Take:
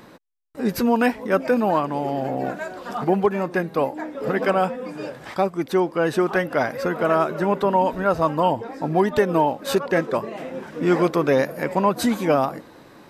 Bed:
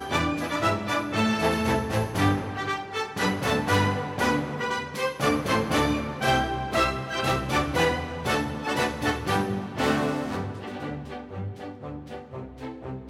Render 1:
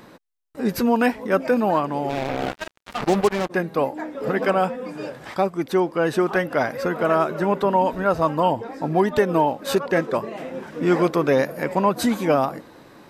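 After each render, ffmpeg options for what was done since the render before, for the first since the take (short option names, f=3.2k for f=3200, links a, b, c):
-filter_complex "[0:a]asplit=3[a][b][c];[a]afade=t=out:st=2.09:d=0.02[d];[b]acrusher=bits=3:mix=0:aa=0.5,afade=t=in:st=2.09:d=0.02,afade=t=out:st=3.49:d=0.02[e];[c]afade=t=in:st=3.49:d=0.02[f];[d][e][f]amix=inputs=3:normalize=0"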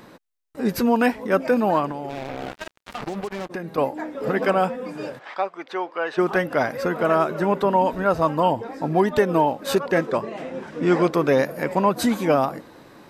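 -filter_complex "[0:a]asettb=1/sr,asplit=3[a][b][c];[a]atrim=end=1.914[d];[b]atrim=start=1.91:end=3.78,asetpts=PTS-STARTPTS,afade=t=in:d=0.004:c=qsin,afade=t=out:st=1.866:d=0.004:c=qsin,acompressor=threshold=-26dB:ratio=6:attack=3.2:release=140:knee=1:detection=peak[e];[c]atrim=start=3.776[f];[d][e]acrossfade=d=0.004:c1=hsin:c2=qsin[g];[g][f]acrossfade=d=0.004:c1=qsin:c2=hsin,asplit=3[h][i][j];[h]afade=t=out:st=5.18:d=0.02[k];[i]highpass=660,lowpass=3.5k,afade=t=in:st=5.18:d=0.02,afade=t=out:st=6.17:d=0.02[l];[j]afade=t=in:st=6.17:d=0.02[m];[k][l][m]amix=inputs=3:normalize=0,asettb=1/sr,asplit=3[n][o][p];[n]atrim=end=10.104[q];[o]atrim=start=10.1:end=11.14,asetpts=PTS-STARTPTS,afade=t=in:d=0.004:c=qsin,afade=t=out:st=1.036:d=0.004:c=qsin,lowpass=8.9k[r];[p]atrim=start=11.136[s];[q][r]acrossfade=d=0.004:c1=hsin:c2=qsin[t];[t][s]acrossfade=d=0.004:c1=qsin:c2=hsin"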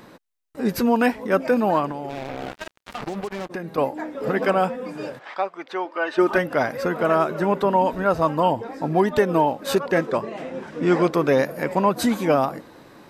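-filter_complex "[0:a]asettb=1/sr,asplit=3[a][b][c];[a]atrim=end=5.854[d];[b]atrim=start=5.85:end=6.38,asetpts=PTS-STARTPTS,afade=t=in:d=0.004:c=qsin,afade=t=out:st=0.526:d=0.004:c=qsin,aecho=1:1:3.3:0.65,atrim=end_sample=23373[e];[c]atrim=start=6.376[f];[d][e]acrossfade=d=0.004:c1=hsin:c2=qsin[g];[g][f]acrossfade=d=0.004:c1=qsin:c2=hsin"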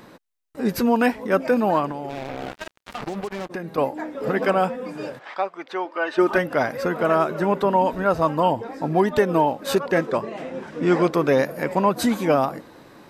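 -af anull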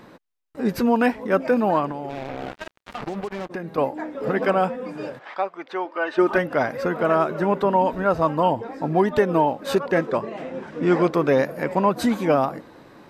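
-af "highshelf=f=4.9k:g=-7.5"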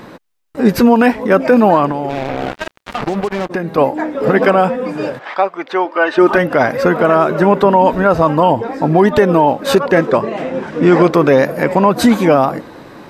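-af "alimiter=level_in=11.5dB:limit=-1dB:release=50:level=0:latency=1"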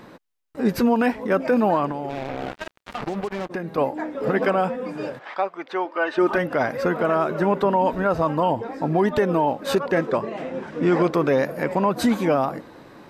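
-af "volume=-9.5dB"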